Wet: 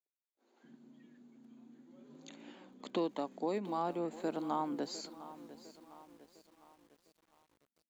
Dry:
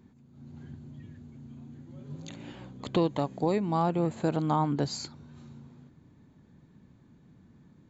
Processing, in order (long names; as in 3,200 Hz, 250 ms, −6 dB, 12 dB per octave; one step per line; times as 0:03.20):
noise gate −50 dBFS, range −35 dB
Butterworth high-pass 380 Hz 36 dB per octave, from 0:00.63 210 Hz
feedback echo at a low word length 704 ms, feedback 55%, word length 8 bits, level −15 dB
level −7.5 dB